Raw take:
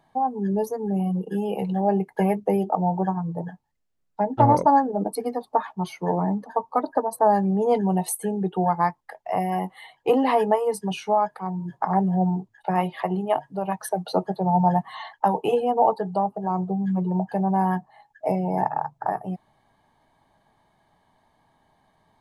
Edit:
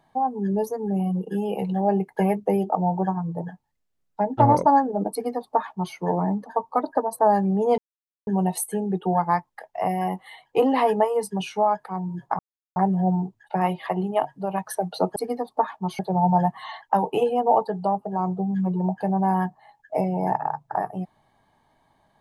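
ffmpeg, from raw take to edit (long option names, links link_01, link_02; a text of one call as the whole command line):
ffmpeg -i in.wav -filter_complex "[0:a]asplit=5[link_01][link_02][link_03][link_04][link_05];[link_01]atrim=end=7.78,asetpts=PTS-STARTPTS,afade=type=out:start_time=7.776:duration=0.004:curve=hsin,apad=pad_dur=0.49[link_06];[link_02]atrim=start=7.78:end=11.9,asetpts=PTS-STARTPTS,afade=type=in:duration=0.004:curve=hsin,afade=type=out:start_time=4.116:duration=0.004:curve=hsin,apad=pad_dur=0.37[link_07];[link_03]atrim=start=11.9:end=14.302,asetpts=PTS-STARTPTS,afade=type=in:duration=0.004:curve=hsin[link_08];[link_04]atrim=start=5.118:end=5.952[link_09];[link_05]atrim=start=14.298[link_10];[link_06][link_07][link_08]concat=n=3:v=0:a=1[link_11];[link_11][link_09]acrossfade=duration=0.004:curve1=hsin:curve2=hsin[link_12];[link_12][link_10]acrossfade=duration=0.004:curve1=hsin:curve2=hsin" out.wav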